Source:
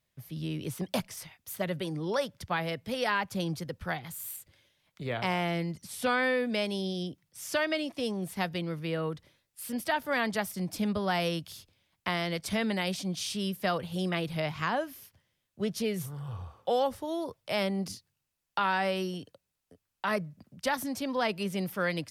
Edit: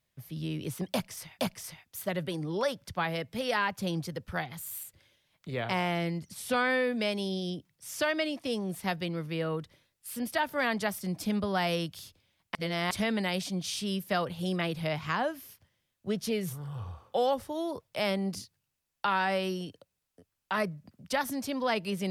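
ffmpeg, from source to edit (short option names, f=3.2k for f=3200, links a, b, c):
-filter_complex "[0:a]asplit=4[a][b][c][d];[a]atrim=end=1.392[e];[b]atrim=start=0.918:end=12.082[f];[c]atrim=start=12.078:end=12.442,asetpts=PTS-STARTPTS,areverse[g];[d]atrim=start=12.438[h];[e][f]acrossfade=d=0.004:c1=hsin:c2=hsin[i];[i][g]acrossfade=d=0.004:c1=hsin:c2=hsin[j];[j][h]acrossfade=d=0.004:c1=hsin:c2=hsin"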